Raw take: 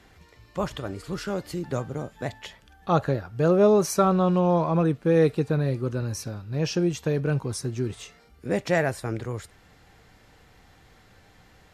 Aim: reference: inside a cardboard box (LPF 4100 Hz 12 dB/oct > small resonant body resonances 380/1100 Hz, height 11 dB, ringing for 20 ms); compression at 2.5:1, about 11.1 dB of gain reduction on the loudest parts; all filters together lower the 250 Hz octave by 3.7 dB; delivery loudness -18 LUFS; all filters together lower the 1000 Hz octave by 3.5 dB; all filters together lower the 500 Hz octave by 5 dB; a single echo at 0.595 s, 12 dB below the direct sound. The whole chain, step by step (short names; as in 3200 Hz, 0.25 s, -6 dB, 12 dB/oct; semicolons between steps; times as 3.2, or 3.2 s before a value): bell 250 Hz -5 dB; bell 500 Hz -4 dB; bell 1000 Hz -3 dB; compressor 2.5:1, threshold -37 dBFS; LPF 4100 Hz 12 dB/oct; echo 0.595 s -12 dB; small resonant body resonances 380/1100 Hz, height 11 dB, ringing for 20 ms; gain +15 dB